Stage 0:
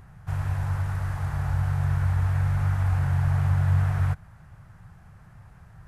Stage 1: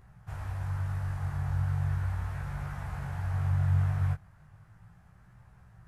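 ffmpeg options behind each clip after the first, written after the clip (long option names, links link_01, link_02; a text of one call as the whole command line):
ffmpeg -i in.wav -af "flanger=delay=16:depth=5.7:speed=0.37,volume=-4dB" out.wav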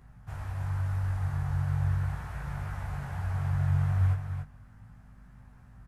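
ffmpeg -i in.wav -filter_complex "[0:a]aeval=exprs='val(0)+0.00178*(sin(2*PI*50*n/s)+sin(2*PI*2*50*n/s)/2+sin(2*PI*3*50*n/s)/3+sin(2*PI*4*50*n/s)/4+sin(2*PI*5*50*n/s)/5)':channel_layout=same,asplit=2[link_01][link_02];[link_02]aecho=0:1:284:0.473[link_03];[link_01][link_03]amix=inputs=2:normalize=0" out.wav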